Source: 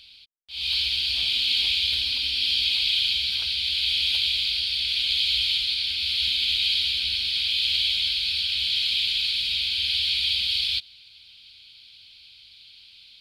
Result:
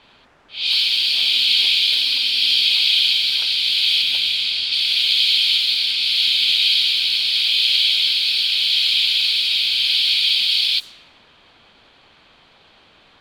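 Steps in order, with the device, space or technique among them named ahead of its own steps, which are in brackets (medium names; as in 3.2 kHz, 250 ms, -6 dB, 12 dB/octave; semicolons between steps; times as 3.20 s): high-pass 270 Hz 12 dB/octave; 4.02–4.72 s: tilt EQ -1.5 dB/octave; cassette deck with a dynamic noise filter (white noise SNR 25 dB; level-controlled noise filter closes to 1.4 kHz, open at -22 dBFS); trim +7 dB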